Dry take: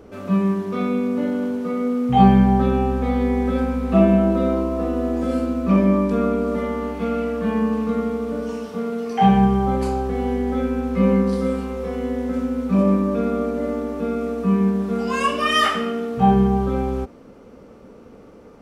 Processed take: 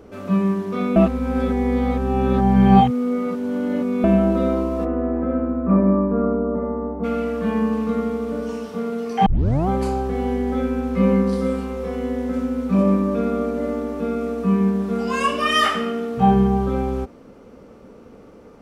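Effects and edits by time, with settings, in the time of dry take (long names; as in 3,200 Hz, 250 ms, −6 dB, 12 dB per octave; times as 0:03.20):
0:00.96–0:04.04: reverse
0:04.84–0:07.03: low-pass filter 2,100 Hz → 1,000 Hz 24 dB per octave
0:09.26: tape start 0.42 s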